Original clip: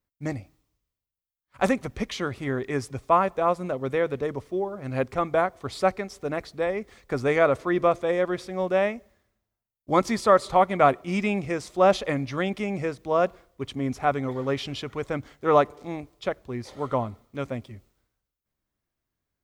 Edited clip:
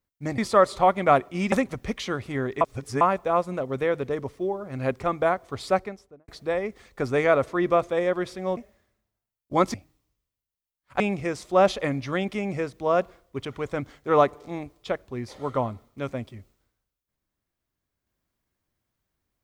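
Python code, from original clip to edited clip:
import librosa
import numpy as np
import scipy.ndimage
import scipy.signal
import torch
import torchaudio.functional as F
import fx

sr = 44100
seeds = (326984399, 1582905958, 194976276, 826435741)

y = fx.studio_fade_out(x, sr, start_s=5.79, length_s=0.61)
y = fx.edit(y, sr, fx.swap(start_s=0.38, length_s=1.26, other_s=10.11, other_length_s=1.14),
    fx.reverse_span(start_s=2.73, length_s=0.4),
    fx.cut(start_s=8.69, length_s=0.25),
    fx.cut(start_s=13.7, length_s=1.12), tone=tone)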